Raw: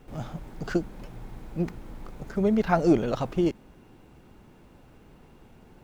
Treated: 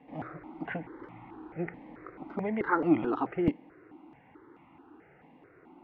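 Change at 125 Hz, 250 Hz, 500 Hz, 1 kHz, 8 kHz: −9.0 dB, −4.5 dB, −7.0 dB, −2.0 dB, can't be measured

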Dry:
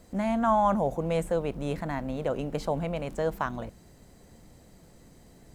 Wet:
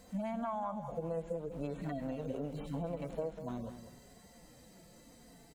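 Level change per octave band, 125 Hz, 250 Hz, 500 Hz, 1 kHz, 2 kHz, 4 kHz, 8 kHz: −8.5, −9.0, −10.5, −14.0, −15.5, −13.0, −10.5 decibels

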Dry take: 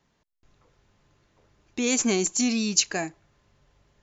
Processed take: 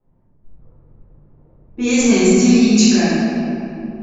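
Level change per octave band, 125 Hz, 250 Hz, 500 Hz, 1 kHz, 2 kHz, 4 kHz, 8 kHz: +17.0 dB, +15.5 dB, +12.5 dB, +9.5 dB, +9.0 dB, +6.5 dB, can't be measured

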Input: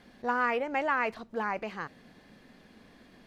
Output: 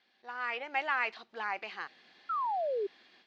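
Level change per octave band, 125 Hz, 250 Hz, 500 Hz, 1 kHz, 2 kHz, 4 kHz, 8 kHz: below −15 dB, −15.0 dB, −2.5 dB, −2.0 dB, −2.0 dB, +2.5 dB, can't be measured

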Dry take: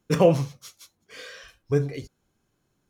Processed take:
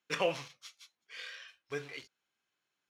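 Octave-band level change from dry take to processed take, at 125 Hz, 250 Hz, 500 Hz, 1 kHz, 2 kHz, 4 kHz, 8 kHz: −25.0, −20.5, −14.0, −9.5, −1.0, −1.5, −8.0 decibels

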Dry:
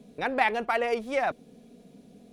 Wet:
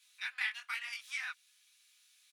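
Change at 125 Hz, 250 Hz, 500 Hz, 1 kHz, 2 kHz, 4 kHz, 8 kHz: below −40 dB, below −40 dB, below −40 dB, −23.5 dB, −6.5 dB, −2.0 dB, +0.5 dB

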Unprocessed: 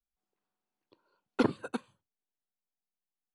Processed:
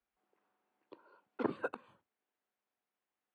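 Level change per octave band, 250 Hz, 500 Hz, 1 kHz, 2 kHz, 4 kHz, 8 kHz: −9.5 dB, −5.0 dB, −5.0 dB, −4.0 dB, −15.5 dB, below −15 dB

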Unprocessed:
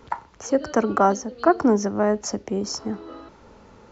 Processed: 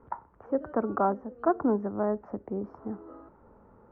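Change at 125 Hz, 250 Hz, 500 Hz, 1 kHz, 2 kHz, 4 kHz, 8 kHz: −7.5 dB, −7.5 dB, −7.5 dB, −8.0 dB, −13.0 dB, below −40 dB, can't be measured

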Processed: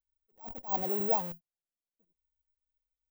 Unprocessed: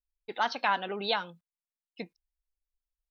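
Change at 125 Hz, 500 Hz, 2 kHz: +3.5, −0.5, −22.5 decibels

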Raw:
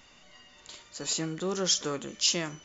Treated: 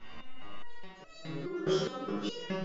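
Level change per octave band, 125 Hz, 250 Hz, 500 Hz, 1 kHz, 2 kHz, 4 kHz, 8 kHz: −1.5 dB, −0.5 dB, 0.0 dB, −1.5 dB, −5.5 dB, −12.5 dB, can't be measured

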